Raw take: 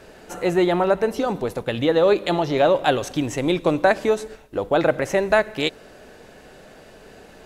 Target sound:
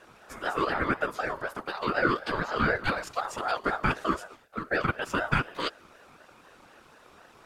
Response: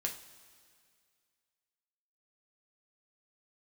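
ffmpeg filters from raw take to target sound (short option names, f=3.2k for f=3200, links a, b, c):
-filter_complex "[0:a]asettb=1/sr,asplit=3[a][b][c];[a]atrim=end=4.444[d];[b]atrim=start=4.44:end=5.11,asetpts=PTS-STARTPTS,afade=t=in:d=0.004:c=qsin,afade=t=out:st=0.666:d=0.004:c=qsin,highpass=270[e];[c]atrim=start=5.106[f];[d][e]acrossfade=d=0.004:c1=hsin:c2=qsin[g];[g][f]acrossfade=d=0.004:c1=qsin:c2=hsin,afftfilt=real='hypot(re,im)*cos(2*PI*random(0))':imag='hypot(re,im)*sin(2*PI*random(1))':win_size=512:overlap=0.75,aeval=exprs='val(0)*sin(2*PI*910*n/s+910*0.2/4*sin(2*PI*4*n/s))':c=same"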